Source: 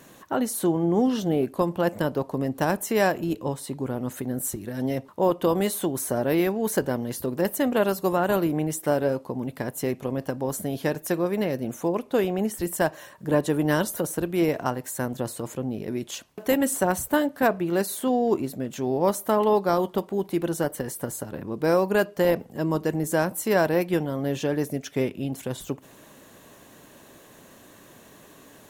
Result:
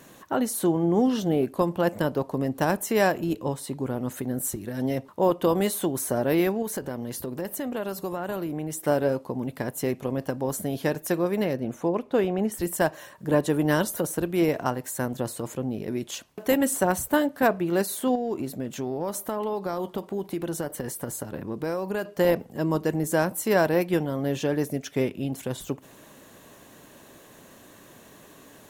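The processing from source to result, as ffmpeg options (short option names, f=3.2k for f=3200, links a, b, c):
-filter_complex "[0:a]asettb=1/sr,asplit=3[a][b][c];[a]atrim=end=6.624[d];[b]atrim=start=6.62:end=8.85,asetpts=PTS-STARTPTS,afade=t=in:d=0.004:c=qsin,afade=t=out:st=2.226:d=0.004:c=qsin,acompressor=threshold=-29dB:ratio=3:attack=3.2:release=140:knee=1:detection=peak[e];[c]atrim=start=8.846[f];[d][e]acrossfade=d=0.004:c1=hsin:c2=qsin[g];[g][f]acrossfade=d=0.004:c1=qsin:c2=hsin,asettb=1/sr,asplit=3[h][i][j];[h]atrim=end=11.534[k];[i]atrim=start=11.53:end=12.52,asetpts=PTS-STARTPTS,afade=t=in:d=0.004:c=qsin,afade=t=out:st=0.986:d=0.004:c=qsin,lowpass=f=3k:p=1[l];[j]atrim=start=12.516[m];[k][l]acrossfade=d=0.004:c1=hsin:c2=qsin[n];[n][m]acrossfade=d=0.004:c1=qsin:c2=hsin,asettb=1/sr,asplit=3[o][p][q];[o]atrim=end=18.154[r];[p]atrim=start=18.15:end=22.05,asetpts=PTS-STARTPTS,afade=t=in:d=0.004:c=qsin,afade=t=out:st=3.896:d=0.004:c=qsin,acompressor=threshold=-25dB:ratio=5:attack=3.2:release=140:knee=1:detection=peak[s];[q]atrim=start=22.046[t];[r][s]acrossfade=d=0.004:c1=hsin:c2=qsin[u];[u][t]acrossfade=d=0.004:c1=qsin:c2=hsin"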